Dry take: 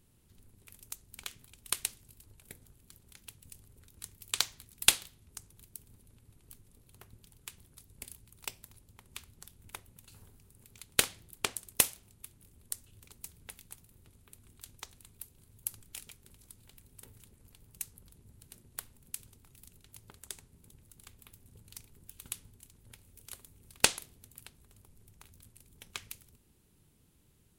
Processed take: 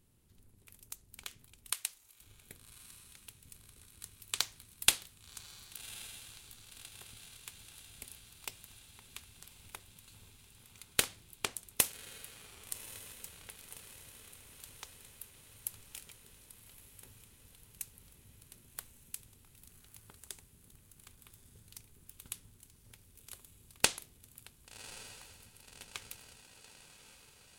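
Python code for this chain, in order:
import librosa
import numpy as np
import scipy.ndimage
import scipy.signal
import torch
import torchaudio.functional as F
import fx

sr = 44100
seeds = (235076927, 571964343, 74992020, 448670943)

p1 = fx.highpass(x, sr, hz=700.0, slope=12, at=(1.72, 2.21))
p2 = p1 + fx.echo_diffused(p1, sr, ms=1131, feedback_pct=67, wet_db=-15.0, dry=0)
y = p2 * librosa.db_to_amplitude(-3.0)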